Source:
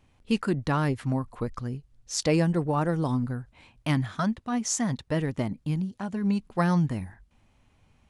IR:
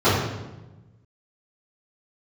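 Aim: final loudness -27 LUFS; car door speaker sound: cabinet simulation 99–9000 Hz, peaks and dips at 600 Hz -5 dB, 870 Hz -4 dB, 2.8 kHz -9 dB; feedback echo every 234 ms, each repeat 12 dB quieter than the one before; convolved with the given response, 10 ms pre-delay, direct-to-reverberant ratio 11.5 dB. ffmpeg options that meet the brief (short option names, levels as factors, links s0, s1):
-filter_complex "[0:a]aecho=1:1:234|468|702:0.251|0.0628|0.0157,asplit=2[s0][s1];[1:a]atrim=start_sample=2205,adelay=10[s2];[s1][s2]afir=irnorm=-1:irlink=0,volume=0.02[s3];[s0][s3]amix=inputs=2:normalize=0,highpass=99,equalizer=f=600:t=q:w=4:g=-5,equalizer=f=870:t=q:w=4:g=-4,equalizer=f=2800:t=q:w=4:g=-9,lowpass=f=9000:w=0.5412,lowpass=f=9000:w=1.3066,volume=1.12"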